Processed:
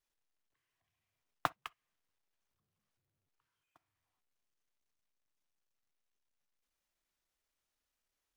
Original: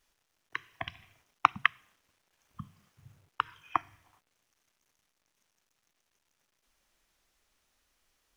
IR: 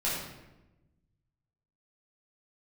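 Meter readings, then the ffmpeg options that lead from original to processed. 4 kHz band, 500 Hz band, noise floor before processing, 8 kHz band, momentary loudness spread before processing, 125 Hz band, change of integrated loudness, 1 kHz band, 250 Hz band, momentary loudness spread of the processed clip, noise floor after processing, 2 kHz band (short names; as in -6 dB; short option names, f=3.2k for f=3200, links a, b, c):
-14.0 dB, -2.5 dB, -79 dBFS, n/a, 23 LU, -10.5 dB, -7.5 dB, -13.5 dB, -9.0 dB, 12 LU, under -85 dBFS, -17.0 dB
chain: -filter_complex "[0:a]aeval=exprs='val(0)+0.5*0.0596*sgn(val(0))':c=same,agate=range=-60dB:threshold=-17dB:ratio=16:detection=peak,asplit=2[a][b];[1:a]atrim=start_sample=2205,atrim=end_sample=3087,highshelf=f=3.9k:g=-11[c];[b][c]afir=irnorm=-1:irlink=0,volume=-26.5dB[d];[a][d]amix=inputs=2:normalize=0,volume=2dB"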